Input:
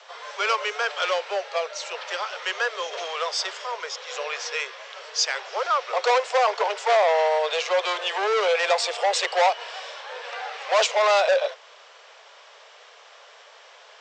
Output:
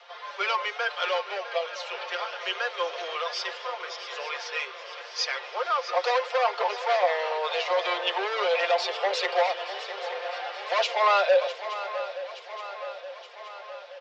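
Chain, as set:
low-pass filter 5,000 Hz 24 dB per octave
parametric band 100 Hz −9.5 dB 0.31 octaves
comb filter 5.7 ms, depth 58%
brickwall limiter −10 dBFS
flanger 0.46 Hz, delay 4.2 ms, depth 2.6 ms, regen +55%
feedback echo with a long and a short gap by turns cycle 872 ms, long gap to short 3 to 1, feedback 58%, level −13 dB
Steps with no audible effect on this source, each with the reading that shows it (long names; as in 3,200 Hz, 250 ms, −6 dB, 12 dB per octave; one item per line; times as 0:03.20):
parametric band 100 Hz: nothing at its input below 340 Hz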